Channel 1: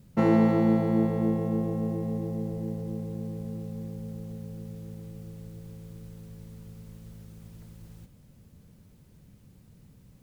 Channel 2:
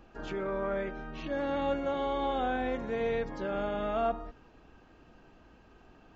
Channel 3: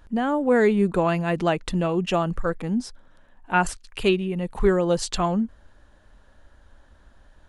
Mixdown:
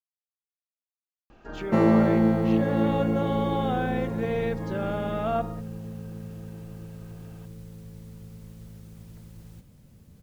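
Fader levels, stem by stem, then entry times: +1.5 dB, +2.5 dB, muted; 1.55 s, 1.30 s, muted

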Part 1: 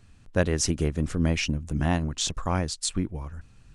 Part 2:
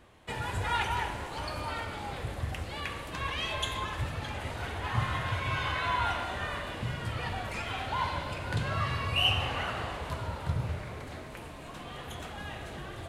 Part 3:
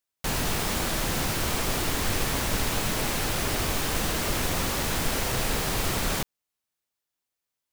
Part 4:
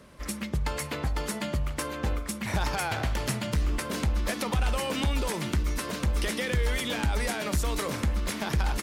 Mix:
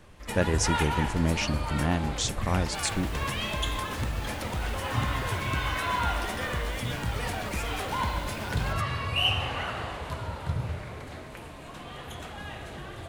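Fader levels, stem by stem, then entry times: −2.0, +1.0, −19.5, −7.0 decibels; 0.00, 0.00, 2.50, 0.00 seconds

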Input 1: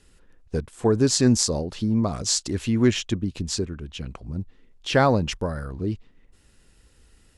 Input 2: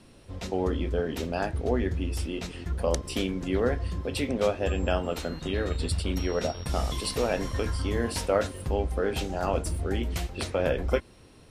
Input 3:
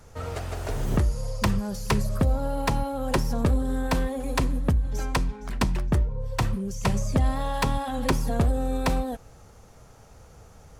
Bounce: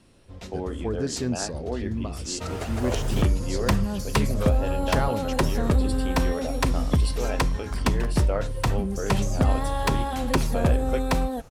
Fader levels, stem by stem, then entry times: −9.5, −4.0, +1.0 decibels; 0.00, 0.00, 2.25 seconds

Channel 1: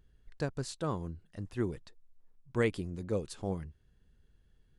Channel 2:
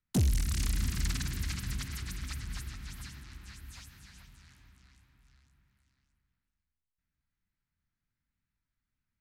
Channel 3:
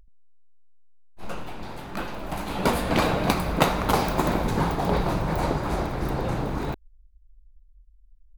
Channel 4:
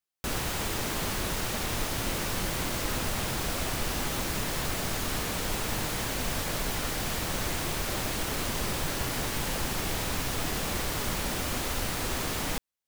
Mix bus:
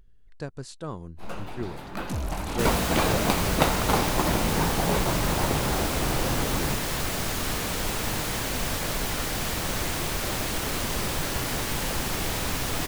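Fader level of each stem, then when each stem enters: −1.0, −5.0, −2.0, +2.5 decibels; 0.00, 1.95, 0.00, 2.35 seconds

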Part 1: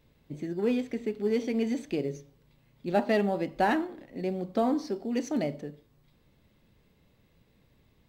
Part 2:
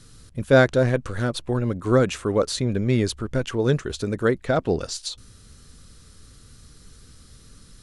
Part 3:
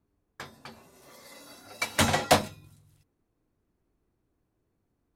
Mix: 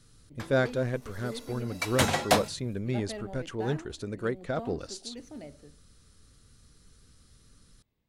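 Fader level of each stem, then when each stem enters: −14.5, −10.0, −2.0 decibels; 0.00, 0.00, 0.00 seconds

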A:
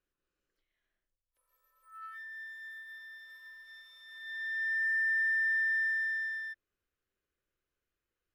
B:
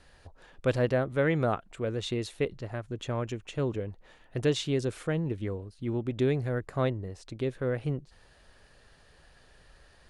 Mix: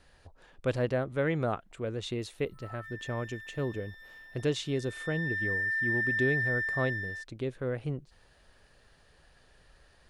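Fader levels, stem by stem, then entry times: −0.5, −3.0 decibels; 0.70, 0.00 seconds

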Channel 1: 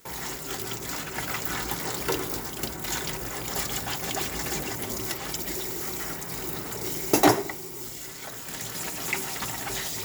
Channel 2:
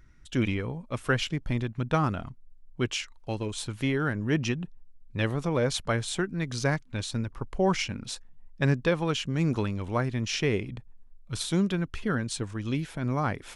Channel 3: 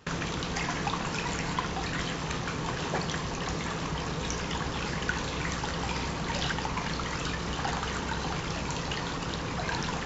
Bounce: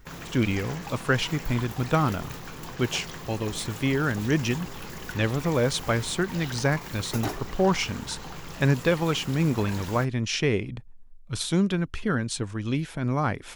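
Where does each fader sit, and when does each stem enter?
−14.0, +2.5, −8.0 decibels; 0.00, 0.00, 0.00 seconds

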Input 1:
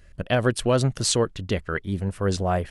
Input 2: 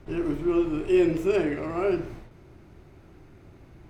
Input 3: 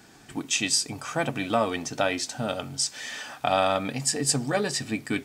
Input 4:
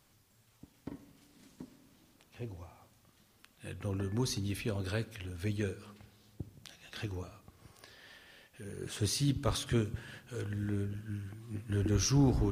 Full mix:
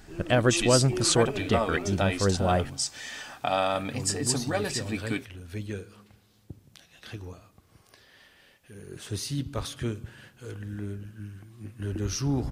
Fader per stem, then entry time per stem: −1.0, −12.5, −3.0, −0.5 decibels; 0.00, 0.00, 0.00, 0.10 seconds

